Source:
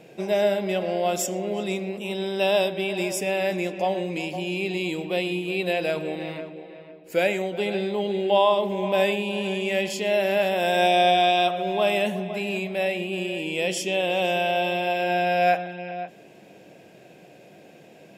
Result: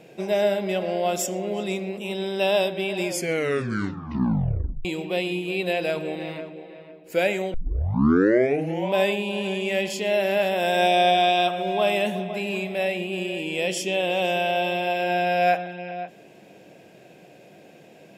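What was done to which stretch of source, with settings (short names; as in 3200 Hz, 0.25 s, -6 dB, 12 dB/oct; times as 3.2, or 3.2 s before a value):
3.04 tape stop 1.81 s
7.54 tape start 1.40 s
10.04–14.14 echo 0.753 s -19.5 dB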